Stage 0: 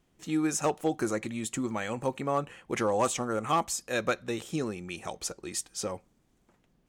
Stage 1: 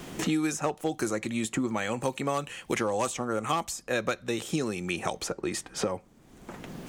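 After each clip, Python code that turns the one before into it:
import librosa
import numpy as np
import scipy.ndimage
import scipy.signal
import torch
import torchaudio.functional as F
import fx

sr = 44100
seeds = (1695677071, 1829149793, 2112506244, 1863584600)

y = fx.band_squash(x, sr, depth_pct=100)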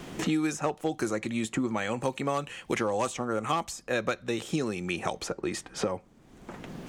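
y = fx.high_shelf(x, sr, hz=8300.0, db=-8.5)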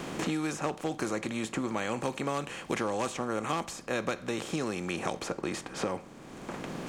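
y = fx.bin_compress(x, sr, power=0.6)
y = y * 10.0 ** (-6.0 / 20.0)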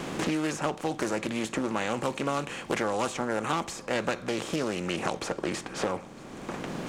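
y = x + 10.0 ** (-22.5 / 20.0) * np.pad(x, (int(954 * sr / 1000.0), 0))[:len(x)]
y = fx.doppler_dist(y, sr, depth_ms=0.36)
y = y * 10.0 ** (3.0 / 20.0)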